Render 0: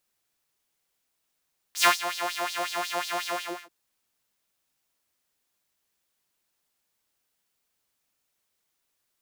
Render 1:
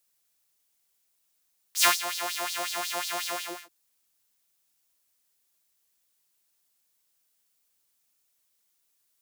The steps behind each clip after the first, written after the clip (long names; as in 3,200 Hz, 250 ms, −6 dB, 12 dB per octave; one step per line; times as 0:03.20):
high-shelf EQ 4,100 Hz +10.5 dB
level −4 dB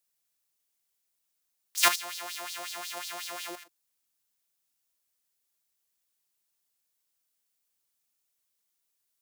output level in coarse steps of 10 dB
level +1 dB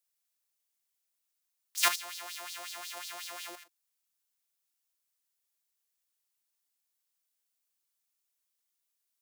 low-shelf EQ 370 Hz −9.5 dB
level −3.5 dB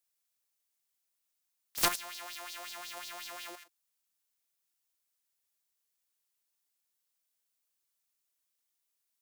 phase distortion by the signal itself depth 0.36 ms